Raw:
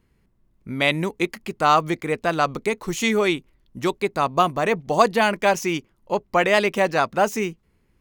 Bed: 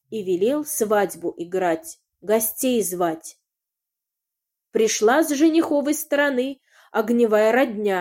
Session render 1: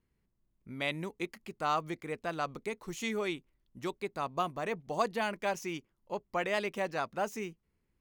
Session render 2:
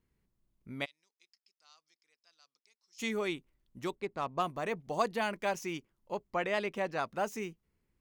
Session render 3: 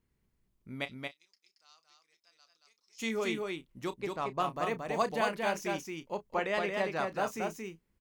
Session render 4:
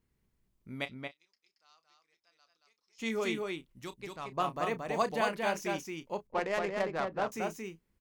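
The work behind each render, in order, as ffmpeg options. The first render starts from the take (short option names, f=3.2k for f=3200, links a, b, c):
-af "volume=-14dB"
-filter_complex "[0:a]asplit=3[a][b][c];[a]afade=t=out:st=0.84:d=0.02[d];[b]bandpass=f=5.2k:t=q:w=13,afade=t=in:st=0.84:d=0.02,afade=t=out:st=2.98:d=0.02[e];[c]afade=t=in:st=2.98:d=0.02[f];[d][e][f]amix=inputs=3:normalize=0,asettb=1/sr,asplit=3[g][h][i];[g]atrim=end=3.954[j];[h]atrim=start=3.95:end=4.42,asetpts=PTS-STARTPTS,afade=t=in:d=0.004:c=qsin,afade=t=out:st=0.466:d=0.004:c=qsin,adynamicsmooth=sensitivity=7.5:basefreq=2.4k[k];[i]atrim=start=4.416[l];[j][k]acrossfade=d=0.004:c1=hsin:c2=qsin[m];[m][l]acrossfade=d=0.004:c1=qsin:c2=hsin,asettb=1/sr,asplit=3[n][o][p];[n]atrim=end=6.304[q];[o]atrim=start=6.3:end=6.99,asetpts=PTS-STARTPTS,afade=t=in:d=0.004:c=qsin,afade=t=out:st=0.686:d=0.004:c=qsin,highshelf=f=6.4k:g=-9[r];[p]atrim=start=6.986[s];[q][r]acrossfade=d=0.004:c1=hsin:c2=qsin[t];[t][s]acrossfade=d=0.004:c1=qsin:c2=hsin"
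-filter_complex "[0:a]asplit=2[a][b];[b]adelay=31,volume=-13dB[c];[a][c]amix=inputs=2:normalize=0,aecho=1:1:227:0.668"
-filter_complex "[0:a]asplit=3[a][b][c];[a]afade=t=out:st=0.88:d=0.02[d];[b]highshelf=f=4.4k:g=-11,afade=t=in:st=0.88:d=0.02,afade=t=out:st=3.05:d=0.02[e];[c]afade=t=in:st=3.05:d=0.02[f];[d][e][f]amix=inputs=3:normalize=0,asplit=3[g][h][i];[g]afade=t=out:st=3.72:d=0.02[j];[h]equalizer=f=510:w=0.31:g=-8.5,afade=t=in:st=3.72:d=0.02,afade=t=out:st=4.31:d=0.02[k];[i]afade=t=in:st=4.31:d=0.02[l];[j][k][l]amix=inputs=3:normalize=0,asettb=1/sr,asplit=3[m][n][o];[m]atrim=end=6.274[p];[n]atrim=start=6.27:end=7.32,asetpts=PTS-STARTPTS,afade=t=in:d=0.004:c=qsin,afade=t=out:st=1.046:d=0.004:c=qsin,adynamicsmooth=sensitivity=3.5:basefreq=850[q];[o]atrim=start=7.316[r];[p][q]acrossfade=d=0.004:c1=hsin:c2=qsin[s];[s][r]acrossfade=d=0.004:c1=qsin:c2=hsin"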